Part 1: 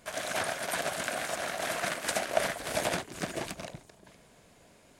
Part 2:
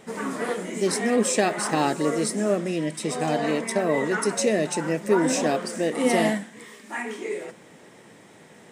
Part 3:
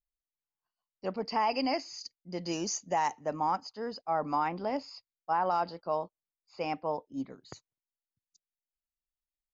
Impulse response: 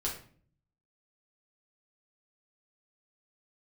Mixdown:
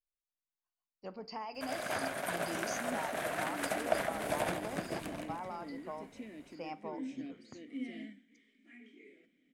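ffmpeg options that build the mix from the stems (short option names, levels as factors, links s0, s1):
-filter_complex "[0:a]equalizer=f=5500:w=0.71:g=-9.5,adelay=1550,volume=0.708,asplit=2[s0][s1];[s1]volume=0.376[s2];[1:a]asplit=3[s3][s4][s5];[s3]bandpass=f=270:t=q:w=8,volume=1[s6];[s4]bandpass=f=2290:t=q:w=8,volume=0.501[s7];[s5]bandpass=f=3010:t=q:w=8,volume=0.355[s8];[s6][s7][s8]amix=inputs=3:normalize=0,equalizer=f=710:t=o:w=0.35:g=8.5,adelay=1750,volume=0.251[s9];[2:a]acompressor=threshold=0.0316:ratio=6,volume=0.316,asplit=2[s10][s11];[s11]volume=0.211[s12];[3:a]atrim=start_sample=2205[s13];[s12][s13]afir=irnorm=-1:irlink=0[s14];[s2]aecho=0:1:161|322|483|644|805|966:1|0.4|0.16|0.064|0.0256|0.0102[s15];[s0][s9][s10][s14][s15]amix=inputs=5:normalize=0"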